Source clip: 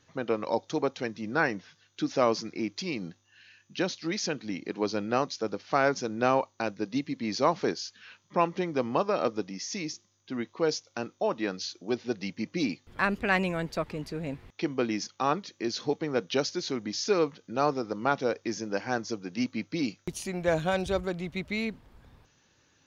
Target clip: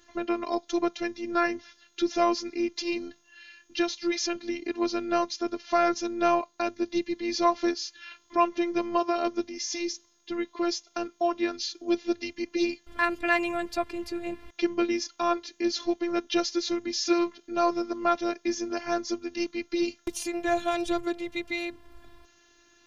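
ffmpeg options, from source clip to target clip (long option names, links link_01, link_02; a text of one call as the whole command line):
ffmpeg -i in.wav -filter_complex "[0:a]asplit=2[link_01][link_02];[link_02]acompressor=threshold=-39dB:ratio=16,volume=-2dB[link_03];[link_01][link_03]amix=inputs=2:normalize=0,afftfilt=real='hypot(re,im)*cos(PI*b)':imag='0':win_size=512:overlap=0.75,volume=4dB" out.wav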